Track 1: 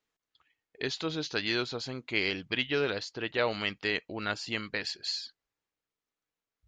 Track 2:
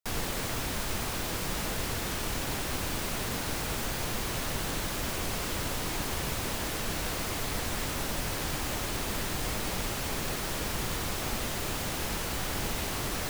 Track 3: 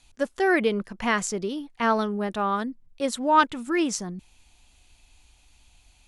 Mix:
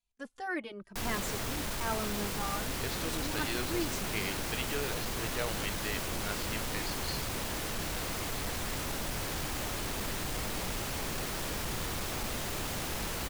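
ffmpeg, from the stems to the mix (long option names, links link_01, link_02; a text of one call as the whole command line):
ffmpeg -i stem1.wav -i stem2.wav -i stem3.wav -filter_complex "[0:a]adelay=2000,volume=-8dB[link_01];[1:a]asoftclip=type=hard:threshold=-28.5dB,adelay=900,volume=-2dB[link_02];[2:a]agate=range=-16dB:threshold=-51dB:ratio=16:detection=peak,asplit=2[link_03][link_04];[link_04]adelay=2.6,afreqshift=1[link_05];[link_03][link_05]amix=inputs=2:normalize=1,volume=-10.5dB[link_06];[link_01][link_02][link_06]amix=inputs=3:normalize=0" out.wav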